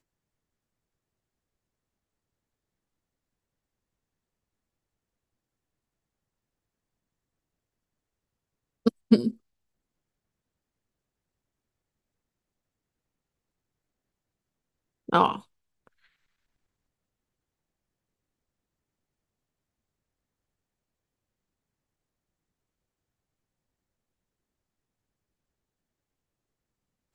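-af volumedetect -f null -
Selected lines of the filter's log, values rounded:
mean_volume: -38.1 dB
max_volume: -5.4 dB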